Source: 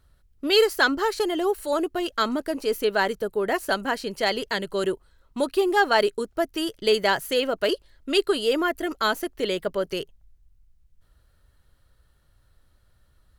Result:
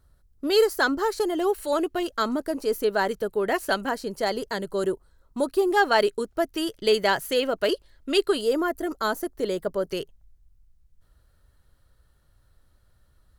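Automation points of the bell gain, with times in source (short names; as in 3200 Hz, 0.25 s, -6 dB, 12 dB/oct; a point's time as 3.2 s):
bell 2700 Hz 1.2 oct
-8.5 dB
from 1.4 s +1 dB
from 2.03 s -7.5 dB
from 3.11 s -0.5 dB
from 3.89 s -11 dB
from 5.71 s -2 dB
from 8.41 s -12 dB
from 9.89 s -3.5 dB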